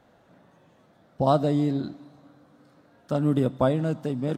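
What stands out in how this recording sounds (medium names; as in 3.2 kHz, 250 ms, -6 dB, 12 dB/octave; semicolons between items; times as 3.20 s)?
noise floor -60 dBFS; spectral tilt -4.5 dB/octave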